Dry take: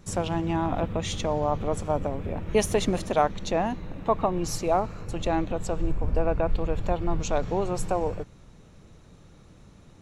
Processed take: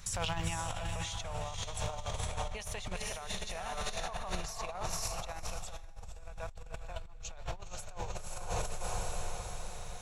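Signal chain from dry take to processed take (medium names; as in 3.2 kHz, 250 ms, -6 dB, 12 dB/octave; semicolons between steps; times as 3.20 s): amplifier tone stack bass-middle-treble 10-0-10; echo that smears into a reverb 501 ms, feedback 52%, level -4 dB; compressor with a negative ratio -42 dBFS, ratio -1; 2.26–4.90 s: treble shelf 8.6 kHz -6.5 dB; trim +3 dB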